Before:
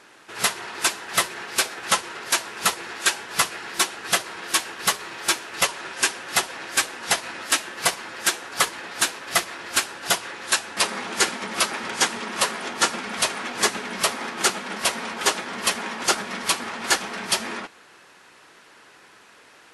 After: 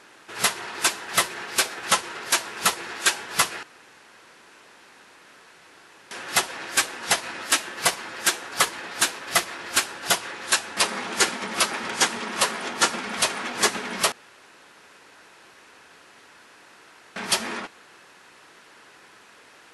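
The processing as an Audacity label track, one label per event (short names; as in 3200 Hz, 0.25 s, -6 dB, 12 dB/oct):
3.630000	6.110000	room tone
14.120000	17.160000	room tone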